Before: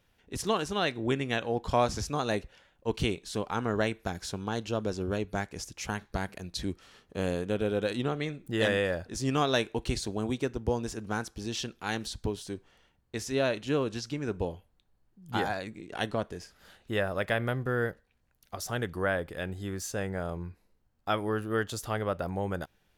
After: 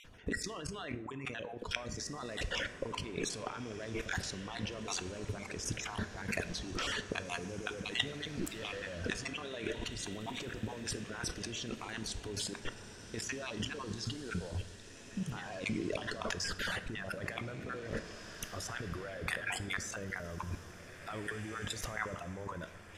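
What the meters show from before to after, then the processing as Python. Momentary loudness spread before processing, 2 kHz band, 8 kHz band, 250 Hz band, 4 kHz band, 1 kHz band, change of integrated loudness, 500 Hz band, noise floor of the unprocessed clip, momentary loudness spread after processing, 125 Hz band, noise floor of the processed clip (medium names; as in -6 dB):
10 LU, -4.0 dB, -0.5 dB, -8.5 dB, -2.5 dB, -10.0 dB, -7.5 dB, -11.5 dB, -70 dBFS, 6 LU, -7.5 dB, -51 dBFS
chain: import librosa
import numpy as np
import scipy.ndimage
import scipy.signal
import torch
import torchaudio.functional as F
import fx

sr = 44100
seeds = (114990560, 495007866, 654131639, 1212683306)

y = fx.spec_dropout(x, sr, seeds[0], share_pct=23)
y = fx.level_steps(y, sr, step_db=21)
y = fx.peak_eq(y, sr, hz=4200.0, db=-4.5, octaves=0.44)
y = fx.over_compress(y, sr, threshold_db=-56.0, ratio=-1.0)
y = scipy.signal.sosfilt(scipy.signal.butter(2, 8000.0, 'lowpass', fs=sr, output='sos'), y)
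y = fx.peak_eq(y, sr, hz=810.0, db=-8.0, octaves=0.26)
y = fx.dereverb_blind(y, sr, rt60_s=1.2)
y = fx.echo_diffused(y, sr, ms=1970, feedback_pct=42, wet_db=-11)
y = fx.rev_plate(y, sr, seeds[1], rt60_s=1.1, hf_ratio=0.55, predelay_ms=0, drr_db=10.5)
y = y * librosa.db_to_amplitude(17.0)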